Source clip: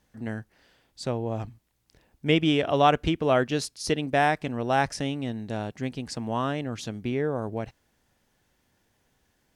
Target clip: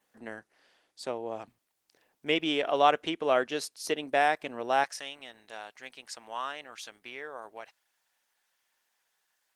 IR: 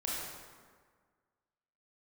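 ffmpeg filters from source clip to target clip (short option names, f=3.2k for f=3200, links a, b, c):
-af "asetnsamples=n=441:p=0,asendcmd='4.84 highpass f 1000',highpass=420,adynamicequalizer=threshold=0.002:dfrequency=4800:dqfactor=5.8:tfrequency=4800:tqfactor=5.8:attack=5:release=100:ratio=0.375:range=1.5:mode=cutabove:tftype=bell,volume=-1.5dB" -ar 48000 -c:a libopus -b:a 20k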